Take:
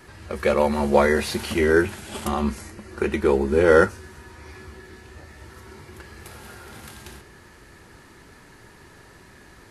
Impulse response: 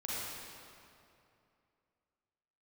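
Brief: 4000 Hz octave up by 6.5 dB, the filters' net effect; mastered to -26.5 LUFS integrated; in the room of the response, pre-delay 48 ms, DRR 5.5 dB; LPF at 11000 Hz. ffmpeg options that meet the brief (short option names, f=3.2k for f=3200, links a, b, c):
-filter_complex "[0:a]lowpass=11k,equalizer=f=4k:t=o:g=8,asplit=2[a][b];[1:a]atrim=start_sample=2205,adelay=48[c];[b][c]afir=irnorm=-1:irlink=0,volume=-9dB[d];[a][d]amix=inputs=2:normalize=0,volume=-6dB"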